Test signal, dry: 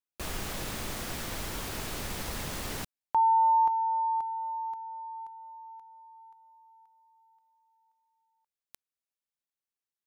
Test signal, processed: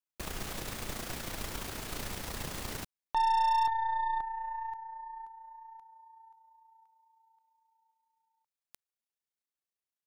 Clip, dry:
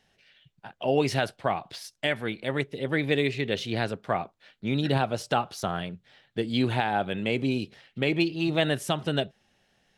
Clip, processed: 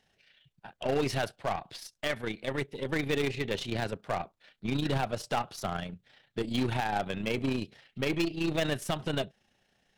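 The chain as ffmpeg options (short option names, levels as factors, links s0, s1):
-af "tremolo=f=29:d=0.462,volume=10,asoftclip=hard,volume=0.1,aeval=exprs='0.106*(cos(1*acos(clip(val(0)/0.106,-1,1)))-cos(1*PI/2))+0.00596*(cos(5*acos(clip(val(0)/0.106,-1,1)))-cos(5*PI/2))+0.0119*(cos(6*acos(clip(val(0)/0.106,-1,1)))-cos(6*PI/2))+0.00335*(cos(7*acos(clip(val(0)/0.106,-1,1)))-cos(7*PI/2))+0.00211*(cos(8*acos(clip(val(0)/0.106,-1,1)))-cos(8*PI/2))':c=same,volume=0.794"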